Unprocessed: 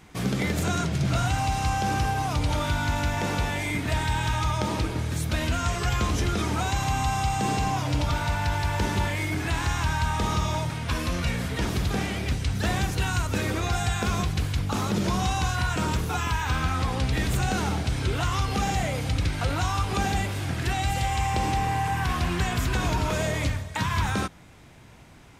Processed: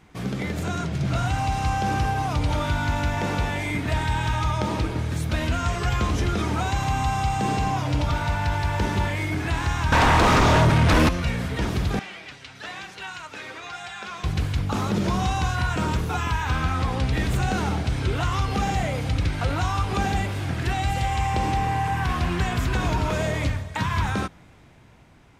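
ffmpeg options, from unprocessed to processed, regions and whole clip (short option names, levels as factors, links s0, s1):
-filter_complex "[0:a]asettb=1/sr,asplit=3[s0][s1][s2];[s0]atrim=end=9.924[s3];[s1]atrim=start=9.92:end=11.09,asetpts=PTS-STARTPTS,afade=t=in:d=0.004:c=qsin,afade=t=out:st=1.166:d=0.004:c=qsin,highshelf=f=2700:g=-4.5,aeval=exprs='0.178*sin(PI/2*3.55*val(0)/0.178)':c=same[s4];[s2]atrim=start=11.086[s5];[s3][s4]acrossfade=d=0.004:c1=hsin:c2=qsin[s6];[s6][s5]acrossfade=d=0.004:c1=qsin:c2=hsin,asettb=1/sr,asplit=3[s7][s8][s9];[s7]atrim=end=11.994[s10];[s8]atrim=start=11.99:end=14.24,asetpts=PTS-STARTPTS,afade=t=in:d=0.004:c=qsin,afade=t=out:st=2.246:d=0.004:c=qsin,flanger=delay=4.9:depth=2.9:regen=47:speed=1:shape=triangular,bandpass=f=2500:t=q:w=0.53[s11];[s9]atrim=start=14.236[s12];[s10][s11]acrossfade=d=0.004:c1=hsin:c2=qsin[s13];[s13][s12]acrossfade=d=0.004:c1=qsin:c2=hsin,highshelf=f=4600:g=-7.5,dynaudnorm=f=200:g=11:m=1.58,volume=0.794"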